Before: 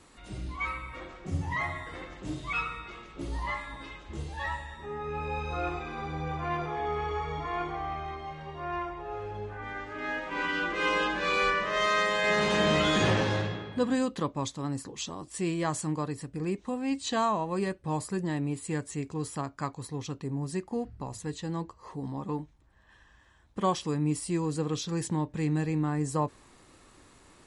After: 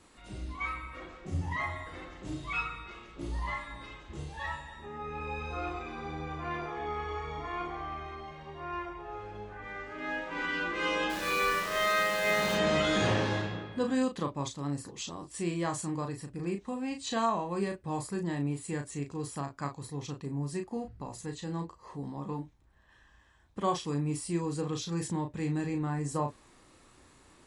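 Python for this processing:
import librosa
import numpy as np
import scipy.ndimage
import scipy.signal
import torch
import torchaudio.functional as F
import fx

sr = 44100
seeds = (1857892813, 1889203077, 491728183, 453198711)

y = fx.sample_gate(x, sr, floor_db=-32.0, at=(11.09, 12.54), fade=0.02)
y = fx.doubler(y, sr, ms=35.0, db=-5.5)
y = y * librosa.db_to_amplitude(-3.5)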